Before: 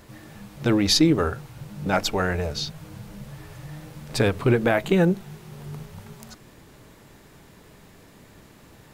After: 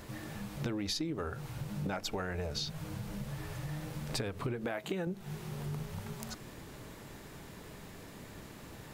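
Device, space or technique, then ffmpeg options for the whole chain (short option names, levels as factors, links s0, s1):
serial compression, peaks first: -filter_complex "[0:a]asettb=1/sr,asplit=3[s0][s1][s2];[s0]atrim=end=4.664[s3];[s1]atrim=start=4.66:end=5.07,asetpts=PTS-STARTPTS,afade=t=in:d=0.004:c=qsin,afade=t=out:st=0.406:d=0.004:c=qsin,highpass=f=220:p=1[s4];[s2]atrim=start=5.066[s5];[s3][s4]acrossfade=d=0.004:c1=hsin:c2=qsin[s6];[s6][s5]acrossfade=d=0.004:c1=qsin:c2=hsin,acompressor=threshold=0.0398:ratio=6,acompressor=threshold=0.0126:ratio=2,volume=1.12"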